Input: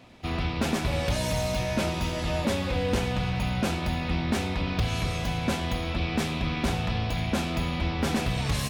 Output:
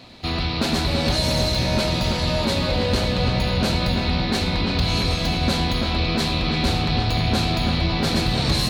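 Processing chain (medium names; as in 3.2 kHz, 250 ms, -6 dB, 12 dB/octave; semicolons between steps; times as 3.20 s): peaking EQ 4.2 kHz +14.5 dB 0.35 oct; in parallel at +3 dB: peak limiter -23 dBFS, peak gain reduction 9 dB; on the sum: filtered feedback delay 334 ms, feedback 74%, low-pass 1.9 kHz, level -4 dB; trim -1.5 dB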